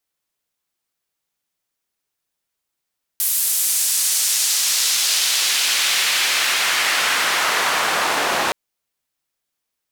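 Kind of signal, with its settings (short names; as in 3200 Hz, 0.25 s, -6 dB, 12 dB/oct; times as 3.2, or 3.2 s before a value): swept filtered noise white, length 5.32 s bandpass, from 12000 Hz, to 770 Hz, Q 0.91, exponential, gain ramp +8 dB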